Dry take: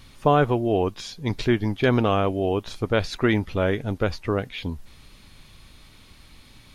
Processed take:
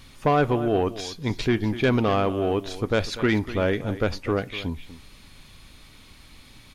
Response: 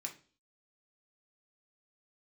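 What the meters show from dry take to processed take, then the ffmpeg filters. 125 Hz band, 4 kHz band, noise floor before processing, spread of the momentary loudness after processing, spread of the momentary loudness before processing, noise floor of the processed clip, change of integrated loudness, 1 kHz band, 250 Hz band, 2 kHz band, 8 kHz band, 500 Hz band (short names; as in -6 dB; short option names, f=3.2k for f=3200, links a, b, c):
-1.5 dB, 0.0 dB, -51 dBFS, 8 LU, 10 LU, -50 dBFS, -0.5 dB, -1.0 dB, -0.5 dB, 0.0 dB, +2.0 dB, -1.0 dB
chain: -filter_complex "[0:a]asplit=2[a][b];[b]aecho=0:1:244:0.158[c];[a][c]amix=inputs=2:normalize=0,asoftclip=type=tanh:threshold=-12.5dB,asplit=2[d][e];[1:a]atrim=start_sample=2205,asetrate=41895,aresample=44100[f];[e][f]afir=irnorm=-1:irlink=0,volume=-11dB[g];[d][g]amix=inputs=2:normalize=0"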